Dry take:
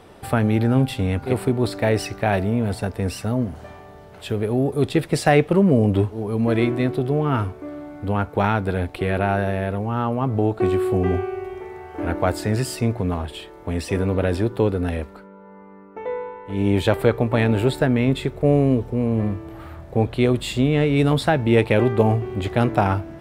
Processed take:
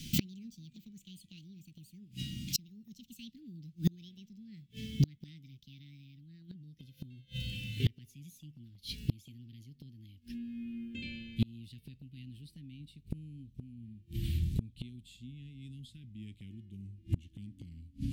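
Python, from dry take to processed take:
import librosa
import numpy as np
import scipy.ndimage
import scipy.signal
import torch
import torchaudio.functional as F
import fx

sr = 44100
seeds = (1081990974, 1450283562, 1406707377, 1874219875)

y = fx.speed_glide(x, sr, from_pct=173, to_pct=83)
y = scipy.signal.sosfilt(scipy.signal.ellip(3, 1.0, 60, [230.0, 3000.0], 'bandstop', fs=sr, output='sos'), y)
y = fx.gate_flip(y, sr, shuts_db=-24.0, range_db=-34)
y = y * 10.0 ** (8.0 / 20.0)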